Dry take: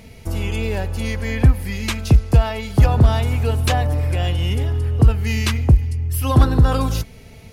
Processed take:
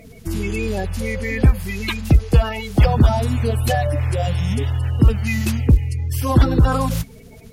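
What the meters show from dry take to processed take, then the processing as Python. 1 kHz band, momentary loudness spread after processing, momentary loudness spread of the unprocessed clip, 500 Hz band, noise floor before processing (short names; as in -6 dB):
+0.5 dB, 9 LU, 10 LU, +1.5 dB, -42 dBFS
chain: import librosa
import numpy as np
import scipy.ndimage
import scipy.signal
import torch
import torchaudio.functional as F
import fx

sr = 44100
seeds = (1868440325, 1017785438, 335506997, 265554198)

y = fx.spec_quant(x, sr, step_db=30)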